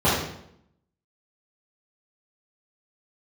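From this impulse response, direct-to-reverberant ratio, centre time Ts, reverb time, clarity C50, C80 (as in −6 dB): −12.0 dB, 59 ms, 0.75 s, 0.5 dB, 4.5 dB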